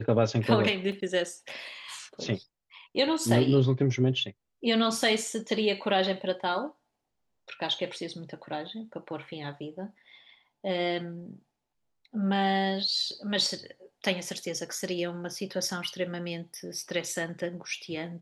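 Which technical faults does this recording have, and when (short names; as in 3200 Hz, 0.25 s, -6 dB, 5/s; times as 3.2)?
0.92 gap 2.4 ms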